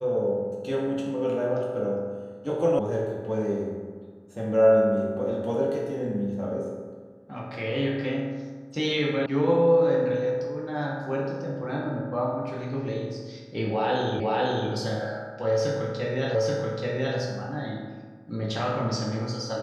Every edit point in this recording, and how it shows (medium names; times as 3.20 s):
2.79 s: sound stops dead
9.26 s: sound stops dead
14.20 s: repeat of the last 0.5 s
16.35 s: repeat of the last 0.83 s